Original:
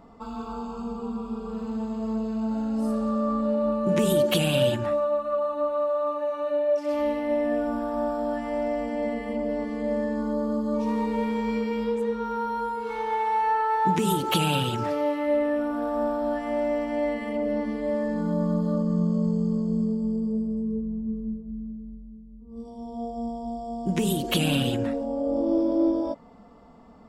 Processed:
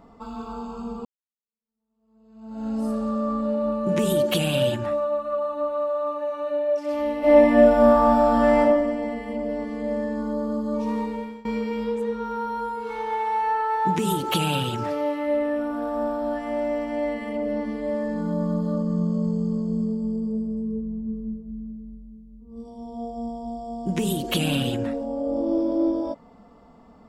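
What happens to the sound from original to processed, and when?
0:01.05–0:02.67: fade in exponential
0:07.19–0:08.60: thrown reverb, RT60 1.2 s, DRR −12 dB
0:10.97–0:11.45: fade out linear, to −23 dB

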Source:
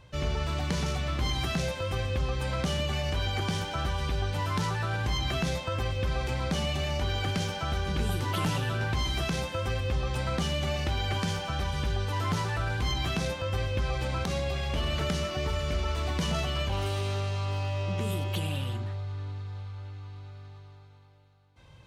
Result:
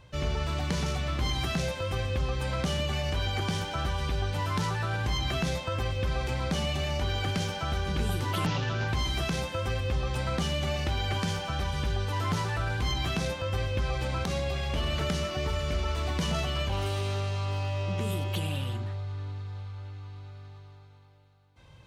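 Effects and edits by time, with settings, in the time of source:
0:08.46–0:08.88: variable-slope delta modulation 32 kbit/s

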